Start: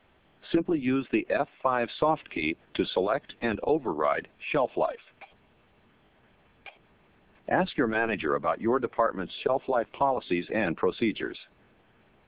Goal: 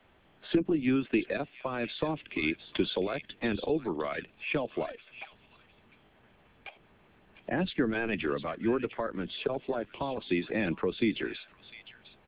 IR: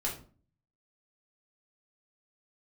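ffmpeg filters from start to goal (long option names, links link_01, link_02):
-filter_complex "[0:a]acrossover=split=110|440|1900[link_01][link_02][link_03][link_04];[link_03]acompressor=threshold=-40dB:ratio=6[link_05];[link_04]aecho=1:1:705:0.335[link_06];[link_01][link_02][link_05][link_06]amix=inputs=4:normalize=0"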